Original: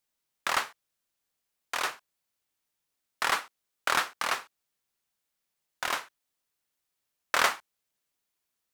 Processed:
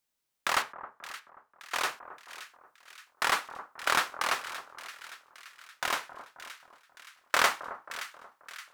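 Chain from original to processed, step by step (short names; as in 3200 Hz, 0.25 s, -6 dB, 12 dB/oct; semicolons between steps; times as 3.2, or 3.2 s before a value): 0.62–1.74 high shelf 3500 Hz -8.5 dB; split-band echo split 1400 Hz, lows 0.267 s, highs 0.572 s, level -13 dB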